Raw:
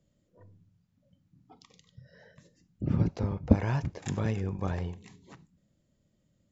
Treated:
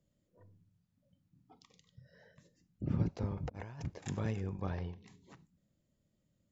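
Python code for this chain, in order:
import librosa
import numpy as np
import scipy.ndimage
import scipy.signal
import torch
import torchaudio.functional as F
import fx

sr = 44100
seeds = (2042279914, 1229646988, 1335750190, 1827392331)

y = fx.over_compress(x, sr, threshold_db=-39.0, ratio=-1.0, at=(3.35, 3.81), fade=0.02)
y = fx.steep_lowpass(y, sr, hz=5800.0, slope=72, at=(4.6, 5.06), fade=0.02)
y = y * librosa.db_to_amplitude(-6.0)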